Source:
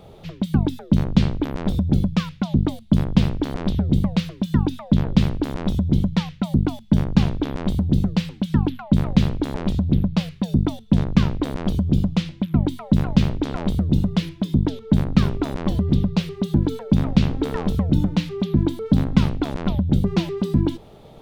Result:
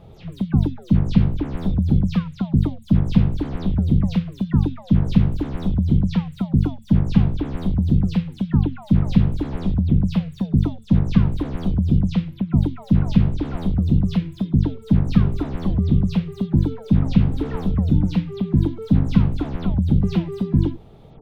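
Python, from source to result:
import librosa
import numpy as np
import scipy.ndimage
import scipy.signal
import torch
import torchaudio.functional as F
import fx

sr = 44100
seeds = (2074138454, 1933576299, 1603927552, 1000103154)

y = fx.spec_delay(x, sr, highs='early', ms=116)
y = fx.bass_treble(y, sr, bass_db=7, treble_db=-5)
y = y * librosa.db_to_amplitude(-4.0)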